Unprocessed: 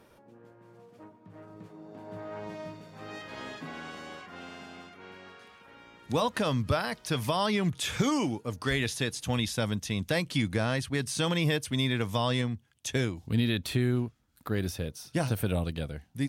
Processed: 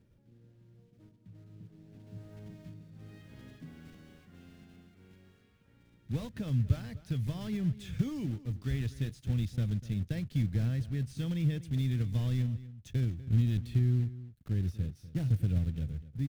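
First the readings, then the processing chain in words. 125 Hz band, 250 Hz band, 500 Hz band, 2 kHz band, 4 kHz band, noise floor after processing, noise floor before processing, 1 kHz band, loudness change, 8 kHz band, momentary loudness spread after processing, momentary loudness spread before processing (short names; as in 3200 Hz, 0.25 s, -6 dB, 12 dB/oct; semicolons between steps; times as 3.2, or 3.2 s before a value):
+2.0 dB, -5.0 dB, -15.0 dB, -17.5 dB, -17.0 dB, -64 dBFS, -60 dBFS, -22.5 dB, -2.5 dB, under -15 dB, 20 LU, 18 LU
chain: block floating point 3-bit; EQ curve 120 Hz 0 dB, 1000 Hz -29 dB, 1700 Hz -21 dB, 3600 Hz -21 dB, 9700 Hz -26 dB; outdoor echo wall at 42 m, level -16 dB; gain +3 dB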